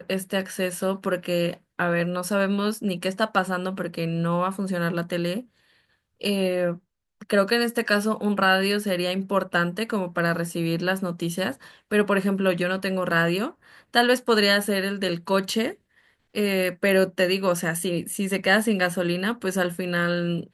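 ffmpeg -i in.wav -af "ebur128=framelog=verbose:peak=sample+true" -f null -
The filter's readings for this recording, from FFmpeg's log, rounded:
Integrated loudness:
  I:         -24.2 LUFS
  Threshold: -34.4 LUFS
Loudness range:
  LRA:         3.8 LU
  Threshold: -44.4 LUFS
  LRA low:   -26.7 LUFS
  LRA high:  -22.8 LUFS
Sample peak:
  Peak:       -5.9 dBFS
True peak:
  Peak:       -5.9 dBFS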